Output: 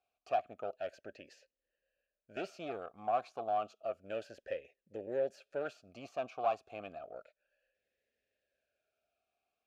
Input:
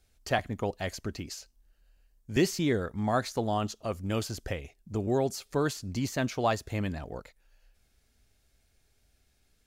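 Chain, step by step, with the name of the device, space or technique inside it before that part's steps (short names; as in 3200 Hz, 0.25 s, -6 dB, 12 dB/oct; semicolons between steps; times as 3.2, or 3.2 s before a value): talk box (tube stage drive 24 dB, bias 0.7; vowel sweep a-e 0.31 Hz); gain +6 dB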